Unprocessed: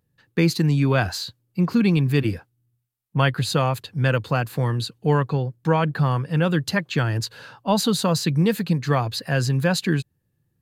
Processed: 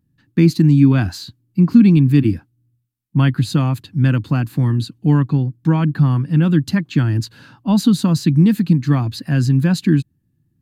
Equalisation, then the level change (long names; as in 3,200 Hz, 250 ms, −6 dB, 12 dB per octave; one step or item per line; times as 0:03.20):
low shelf with overshoot 370 Hz +8 dB, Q 3
−2.5 dB